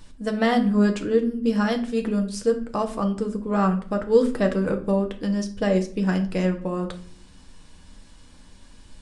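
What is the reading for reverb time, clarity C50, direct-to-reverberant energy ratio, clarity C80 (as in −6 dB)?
0.50 s, 13.0 dB, 4.0 dB, 17.5 dB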